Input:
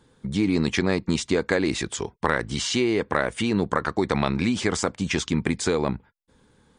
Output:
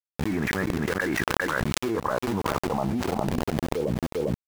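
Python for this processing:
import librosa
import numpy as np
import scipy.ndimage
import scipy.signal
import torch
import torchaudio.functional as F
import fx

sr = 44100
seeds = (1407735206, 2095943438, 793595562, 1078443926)

y = scipy.signal.sosfilt(scipy.signal.butter(4, 2700.0, 'lowpass', fs=sr, output='sos'), x)
y = fx.peak_eq(y, sr, hz=93.0, db=4.5, octaves=0.4)
y = fx.leveller(y, sr, passes=2)
y = fx.auto_swell(y, sr, attack_ms=174.0)
y = fx.rider(y, sr, range_db=3, speed_s=2.0)
y = fx.stretch_grains(y, sr, factor=0.66, grain_ms=148.0)
y = fx.filter_sweep_lowpass(y, sr, from_hz=1700.0, to_hz=440.0, start_s=1.02, end_s=4.33, q=2.9)
y = np.where(np.abs(y) >= 10.0 ** (-26.0 / 20.0), y, 0.0)
y = y + 10.0 ** (-22.5 / 20.0) * np.pad(y, (int(400 * sr / 1000.0), 0))[:len(y)]
y = fx.env_flatten(y, sr, amount_pct=100)
y = F.gain(torch.from_numpy(y), -15.5).numpy()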